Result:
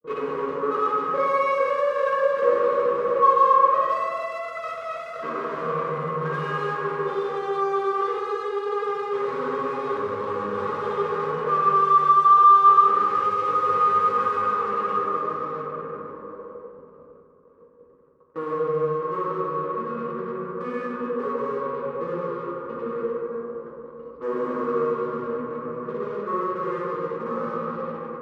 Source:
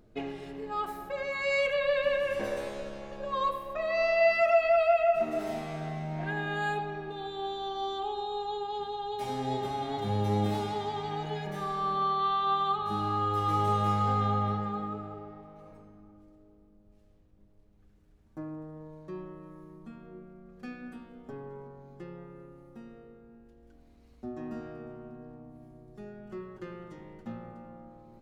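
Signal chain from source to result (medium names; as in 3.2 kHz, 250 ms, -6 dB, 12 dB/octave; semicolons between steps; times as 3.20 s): granulator 100 ms, grains 20 per s, pitch spread up and down by 0 st; spectral gate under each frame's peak -30 dB strong; in parallel at -7 dB: fuzz box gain 52 dB, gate -58 dBFS; on the sum: two resonant band-passes 740 Hz, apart 1.2 oct; reverberation RT60 1.8 s, pre-delay 3 ms, DRR -3 dB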